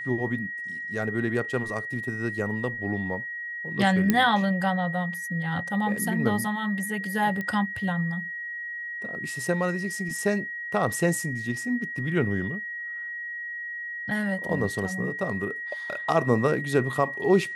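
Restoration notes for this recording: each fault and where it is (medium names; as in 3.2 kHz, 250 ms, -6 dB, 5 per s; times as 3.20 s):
whine 1.9 kHz -32 dBFS
4.10 s: pop -7 dBFS
7.41 s: pop -19 dBFS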